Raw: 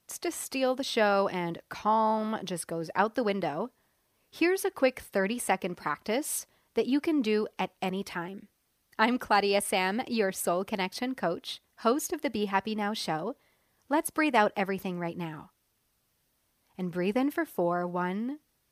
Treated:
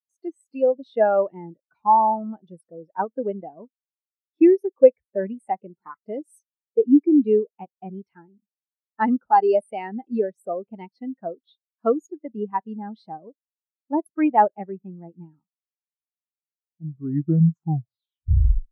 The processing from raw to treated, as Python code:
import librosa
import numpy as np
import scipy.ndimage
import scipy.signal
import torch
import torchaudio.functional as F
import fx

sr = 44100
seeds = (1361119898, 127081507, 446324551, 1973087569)

y = fx.tape_stop_end(x, sr, length_s=2.18)
y = fx.spectral_expand(y, sr, expansion=2.5)
y = F.gain(torch.from_numpy(y), 7.0).numpy()